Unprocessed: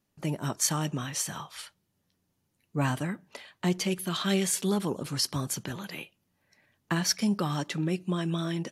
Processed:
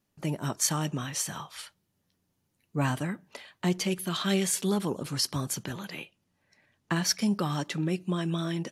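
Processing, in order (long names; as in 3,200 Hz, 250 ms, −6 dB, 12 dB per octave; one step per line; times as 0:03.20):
0:05.87–0:06.96: low-pass filter 10,000 Hz 12 dB per octave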